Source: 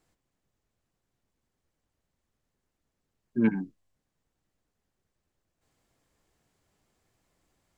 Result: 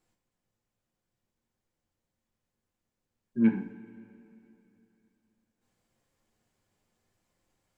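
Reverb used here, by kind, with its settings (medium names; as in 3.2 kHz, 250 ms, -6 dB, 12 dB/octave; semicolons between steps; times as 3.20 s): two-slope reverb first 0.39 s, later 3.1 s, from -17 dB, DRR 2 dB; trim -5.5 dB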